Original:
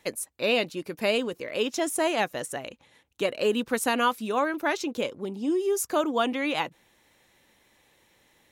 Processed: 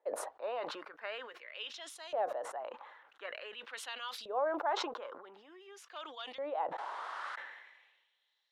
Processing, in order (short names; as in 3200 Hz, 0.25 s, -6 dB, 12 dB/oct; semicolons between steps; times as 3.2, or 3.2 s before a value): painted sound noise, 6.78–7.36, 240–11000 Hz -27 dBFS; bell 2400 Hz -9 dB 0.56 oct; hard clip -15.5 dBFS, distortion -35 dB; three-band isolator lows -23 dB, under 410 Hz, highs -18 dB, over 3500 Hz; LFO band-pass saw up 0.47 Hz 540–4700 Hz; sustainer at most 48 dB/s; gain -1.5 dB